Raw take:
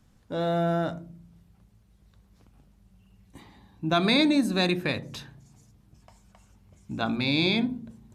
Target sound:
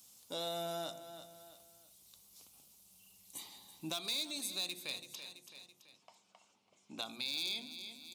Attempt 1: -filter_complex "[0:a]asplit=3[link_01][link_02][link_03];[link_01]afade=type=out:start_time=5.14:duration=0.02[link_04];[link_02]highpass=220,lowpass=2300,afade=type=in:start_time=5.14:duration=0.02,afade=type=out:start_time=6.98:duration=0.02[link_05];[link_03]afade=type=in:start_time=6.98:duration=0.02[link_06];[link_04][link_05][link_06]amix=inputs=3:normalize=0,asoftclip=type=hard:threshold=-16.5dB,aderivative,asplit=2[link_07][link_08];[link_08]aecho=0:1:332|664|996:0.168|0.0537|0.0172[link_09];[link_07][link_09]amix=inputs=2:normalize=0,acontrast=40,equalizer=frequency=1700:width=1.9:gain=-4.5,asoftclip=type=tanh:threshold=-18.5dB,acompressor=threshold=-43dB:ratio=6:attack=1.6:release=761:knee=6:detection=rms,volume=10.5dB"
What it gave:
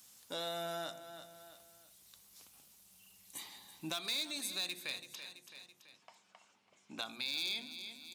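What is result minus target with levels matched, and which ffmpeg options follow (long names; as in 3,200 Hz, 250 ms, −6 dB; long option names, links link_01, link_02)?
2,000 Hz band +3.5 dB
-filter_complex "[0:a]asplit=3[link_01][link_02][link_03];[link_01]afade=type=out:start_time=5.14:duration=0.02[link_04];[link_02]highpass=220,lowpass=2300,afade=type=in:start_time=5.14:duration=0.02,afade=type=out:start_time=6.98:duration=0.02[link_05];[link_03]afade=type=in:start_time=6.98:duration=0.02[link_06];[link_04][link_05][link_06]amix=inputs=3:normalize=0,asoftclip=type=hard:threshold=-16.5dB,aderivative,asplit=2[link_07][link_08];[link_08]aecho=0:1:332|664|996:0.168|0.0537|0.0172[link_09];[link_07][link_09]amix=inputs=2:normalize=0,acontrast=40,equalizer=frequency=1700:width=1.9:gain=-15.5,asoftclip=type=tanh:threshold=-18.5dB,acompressor=threshold=-43dB:ratio=6:attack=1.6:release=761:knee=6:detection=rms,volume=10.5dB"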